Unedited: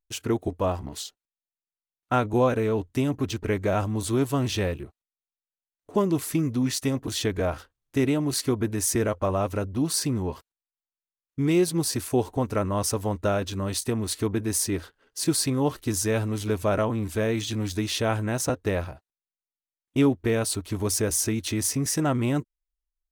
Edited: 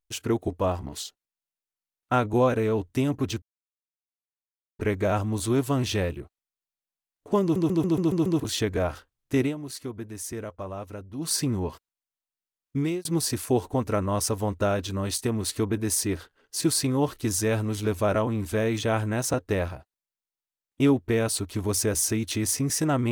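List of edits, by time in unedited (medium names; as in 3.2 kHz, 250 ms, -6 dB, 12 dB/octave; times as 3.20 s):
3.42 s: insert silence 1.37 s
6.05 s: stutter in place 0.14 s, 7 plays
8.05–9.94 s: dip -10.5 dB, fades 0.13 s
11.39–11.68 s: fade out
17.46–17.99 s: delete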